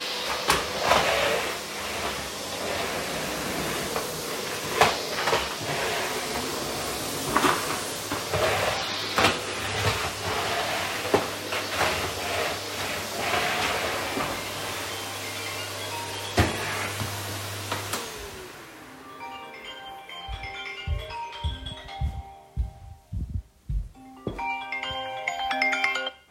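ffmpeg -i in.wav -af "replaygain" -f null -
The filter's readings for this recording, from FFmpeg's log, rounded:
track_gain = +7.1 dB
track_peak = 0.404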